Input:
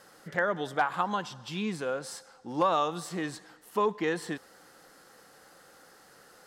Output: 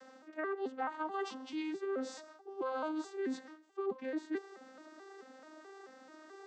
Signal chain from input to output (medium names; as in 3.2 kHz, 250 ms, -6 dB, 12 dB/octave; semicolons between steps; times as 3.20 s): vocoder on a broken chord minor triad, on C4, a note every 217 ms; reverse; compression 8:1, threshold -40 dBFS, peak gain reduction 19.5 dB; reverse; trim +5 dB